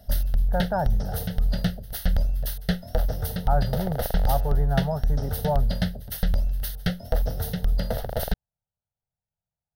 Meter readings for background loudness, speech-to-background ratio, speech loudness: -28.0 LUFS, -2.0 dB, -30.0 LUFS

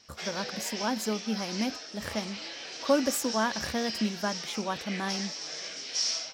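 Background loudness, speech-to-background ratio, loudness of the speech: -35.0 LUFS, 2.5 dB, -32.5 LUFS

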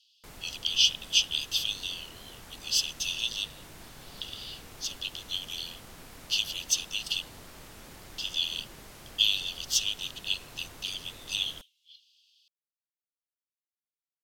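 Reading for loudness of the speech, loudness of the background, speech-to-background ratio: -29.5 LUFS, -48.0 LUFS, 18.5 dB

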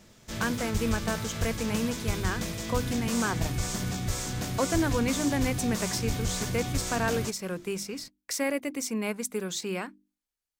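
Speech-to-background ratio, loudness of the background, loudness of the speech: 0.5 dB, -32.0 LUFS, -31.5 LUFS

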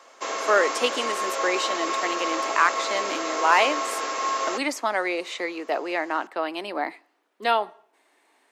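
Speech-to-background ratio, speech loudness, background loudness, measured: 1.5 dB, -26.0 LUFS, -27.5 LUFS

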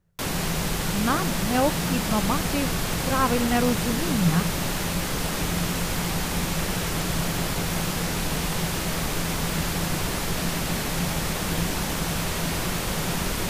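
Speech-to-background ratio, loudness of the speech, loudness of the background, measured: 0.0 dB, -26.5 LUFS, -26.5 LUFS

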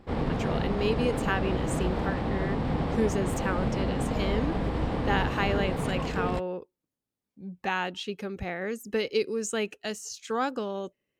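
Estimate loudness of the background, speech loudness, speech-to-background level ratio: -30.0 LUFS, -32.0 LUFS, -2.0 dB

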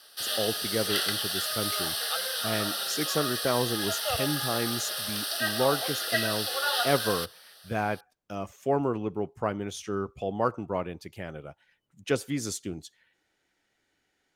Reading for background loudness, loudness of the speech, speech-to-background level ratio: -28.5 LUFS, -32.0 LUFS, -3.5 dB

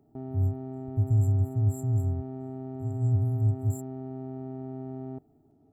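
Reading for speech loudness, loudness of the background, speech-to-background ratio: -28.0 LUFS, -38.5 LUFS, 10.5 dB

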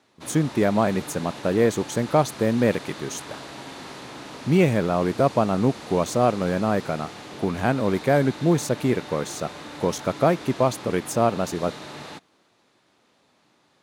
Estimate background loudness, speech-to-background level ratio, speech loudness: -38.5 LUFS, 15.0 dB, -23.5 LUFS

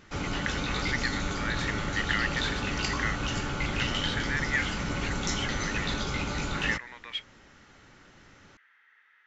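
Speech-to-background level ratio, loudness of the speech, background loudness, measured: -3.5 dB, -34.5 LUFS, -31.0 LUFS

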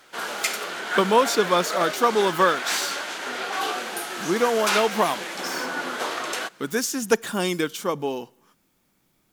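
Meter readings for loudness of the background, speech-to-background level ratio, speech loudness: -28.0 LUFS, 4.5 dB, -23.5 LUFS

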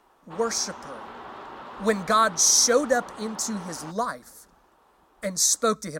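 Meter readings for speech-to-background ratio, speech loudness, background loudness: 18.5 dB, -22.5 LUFS, -41.0 LUFS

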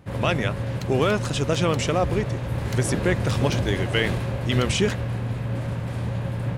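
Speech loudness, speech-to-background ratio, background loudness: -25.5 LUFS, 2.5 dB, -28.0 LUFS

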